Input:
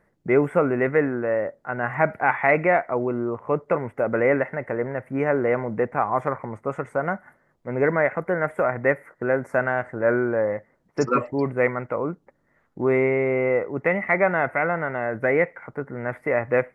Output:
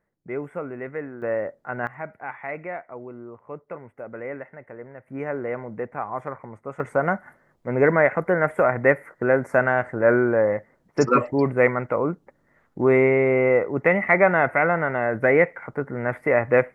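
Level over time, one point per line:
−11.5 dB
from 0:01.22 −2 dB
from 0:01.87 −13.5 dB
from 0:05.08 −7 dB
from 0:06.80 +3 dB

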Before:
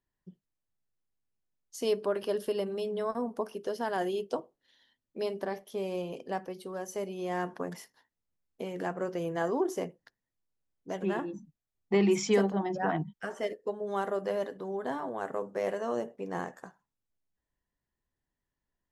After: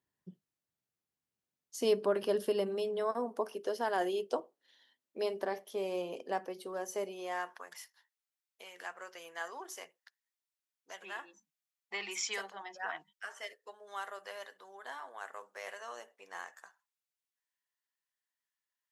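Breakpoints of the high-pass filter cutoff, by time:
0:02.30 100 Hz
0:02.94 330 Hz
0:07.01 330 Hz
0:07.62 1,400 Hz

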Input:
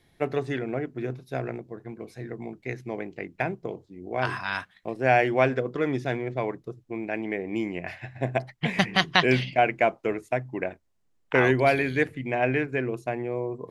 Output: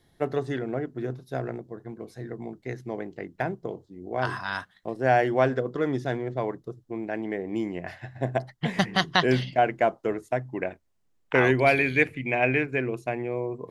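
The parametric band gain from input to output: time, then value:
parametric band 2,400 Hz 0.36 octaves
0:10.21 −11.5 dB
0:10.69 0 dB
0:11.44 0 dB
0:12.08 +11.5 dB
0:12.81 +3.5 dB

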